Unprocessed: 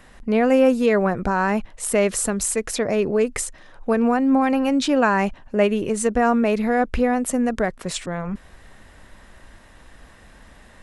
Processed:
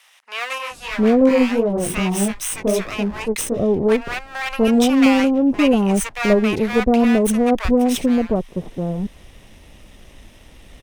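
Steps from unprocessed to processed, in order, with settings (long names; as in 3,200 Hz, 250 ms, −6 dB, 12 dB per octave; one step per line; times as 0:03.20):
lower of the sound and its delayed copy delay 0.33 ms
0:00.58–0:02.87: chorus effect 2.6 Hz, delay 16 ms, depth 4.2 ms
multiband delay without the direct sound highs, lows 710 ms, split 910 Hz
level +4 dB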